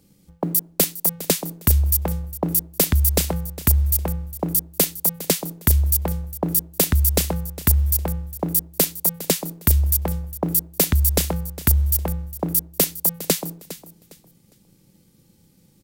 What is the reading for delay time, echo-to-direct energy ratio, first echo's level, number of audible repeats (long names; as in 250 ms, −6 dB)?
407 ms, −15.0 dB, −15.5 dB, 2